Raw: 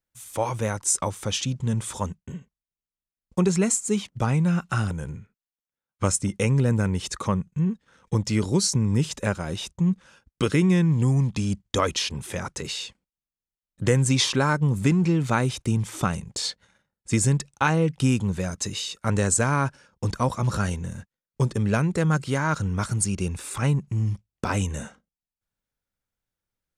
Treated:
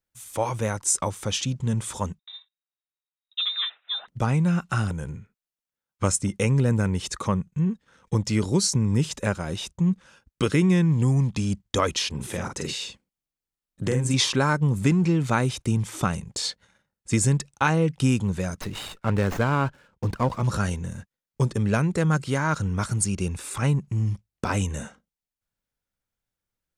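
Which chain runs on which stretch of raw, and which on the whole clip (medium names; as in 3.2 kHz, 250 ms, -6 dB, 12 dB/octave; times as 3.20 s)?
2.19–4.08 s: frequency inversion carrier 3.8 kHz + high-pass 960 Hz + distance through air 270 m
12.15–14.14 s: compression 2:1, threshold -28 dBFS + peaking EQ 270 Hz +4 dB 1.6 oct + doubling 47 ms -5 dB
18.61–20.42 s: distance through air 80 m + sliding maximum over 5 samples
whole clip: none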